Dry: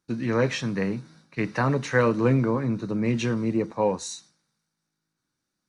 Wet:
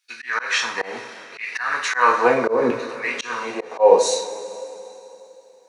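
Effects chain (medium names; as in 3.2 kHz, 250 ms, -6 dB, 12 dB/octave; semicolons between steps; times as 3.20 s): LFO high-pass saw down 0.74 Hz 390–2500 Hz; two-slope reverb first 0.36 s, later 3.2 s, from -18 dB, DRR 0 dB; slow attack 170 ms; trim +7 dB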